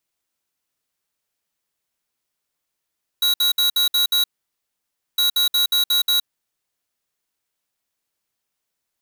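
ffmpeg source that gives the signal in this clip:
-f lavfi -i "aevalsrc='0.133*(2*lt(mod(3880*t,1),0.5)-1)*clip(min(mod(mod(t,1.96),0.18),0.12-mod(mod(t,1.96),0.18))/0.005,0,1)*lt(mod(t,1.96),1.08)':d=3.92:s=44100"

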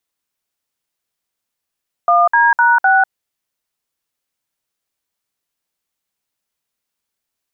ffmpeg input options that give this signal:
-f lavfi -i "aevalsrc='0.282*clip(min(mod(t,0.254),0.196-mod(t,0.254))/0.002,0,1)*(eq(floor(t/0.254),0)*(sin(2*PI*697*mod(t,0.254))+sin(2*PI*1209*mod(t,0.254)))+eq(floor(t/0.254),1)*(sin(2*PI*941*mod(t,0.254))+sin(2*PI*1633*mod(t,0.254)))+eq(floor(t/0.254),2)*(sin(2*PI*941*mod(t,0.254))+sin(2*PI*1477*mod(t,0.254)))+eq(floor(t/0.254),3)*(sin(2*PI*770*mod(t,0.254))+sin(2*PI*1477*mod(t,0.254))))':d=1.016:s=44100"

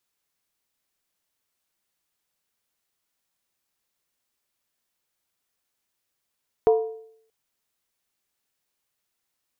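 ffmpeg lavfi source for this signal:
-f lavfi -i "aevalsrc='0.251*pow(10,-3*t/0.67)*sin(2*PI*444*t)+0.0891*pow(10,-3*t/0.531)*sin(2*PI*707.7*t)+0.0316*pow(10,-3*t/0.458)*sin(2*PI*948.4*t)+0.0112*pow(10,-3*t/0.442)*sin(2*PI*1019.4*t)+0.00398*pow(10,-3*t/0.411)*sin(2*PI*1177.9*t)':d=0.63:s=44100"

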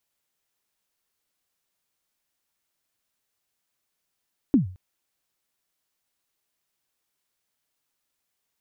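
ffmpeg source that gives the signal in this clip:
-f lavfi -i "aevalsrc='0.282*pow(10,-3*t/0.4)*sin(2*PI*(310*0.124/log(92/310)*(exp(log(92/310)*min(t,0.124)/0.124)-1)+92*max(t-0.124,0)))':d=0.22:s=44100"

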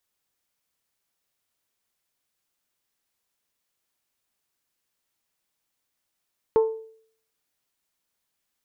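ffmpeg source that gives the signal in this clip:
-f lavfi -i "aevalsrc='0.224*pow(10,-3*t/0.58)*sin(2*PI*444*t)+0.0631*pow(10,-3*t/0.357)*sin(2*PI*888*t)+0.0178*pow(10,-3*t/0.314)*sin(2*PI*1065.6*t)+0.00501*pow(10,-3*t/0.269)*sin(2*PI*1332*t)+0.00141*pow(10,-3*t/0.22)*sin(2*PI*1776*t)':d=0.89:s=44100"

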